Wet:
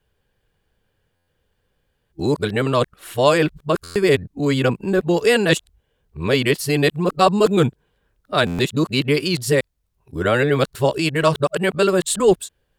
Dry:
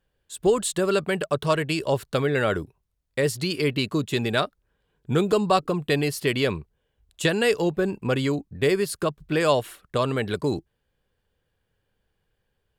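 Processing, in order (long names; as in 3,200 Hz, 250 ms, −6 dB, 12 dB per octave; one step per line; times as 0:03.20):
played backwards from end to start
buffer that repeats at 0:01.15/0:03.83/0:08.46, samples 512, times 10
level +5.5 dB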